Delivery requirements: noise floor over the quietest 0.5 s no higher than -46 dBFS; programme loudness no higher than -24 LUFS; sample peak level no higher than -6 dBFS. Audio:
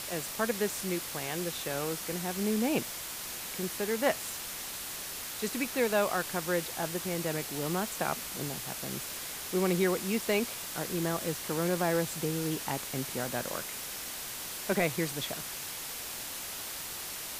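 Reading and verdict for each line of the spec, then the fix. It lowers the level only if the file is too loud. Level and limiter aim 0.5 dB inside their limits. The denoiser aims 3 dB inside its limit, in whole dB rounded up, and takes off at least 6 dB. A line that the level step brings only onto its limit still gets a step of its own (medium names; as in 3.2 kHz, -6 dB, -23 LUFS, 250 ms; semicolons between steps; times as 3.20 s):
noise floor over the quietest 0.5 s -40 dBFS: fail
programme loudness -32.5 LUFS: pass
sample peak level -15.0 dBFS: pass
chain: noise reduction 9 dB, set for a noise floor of -40 dBFS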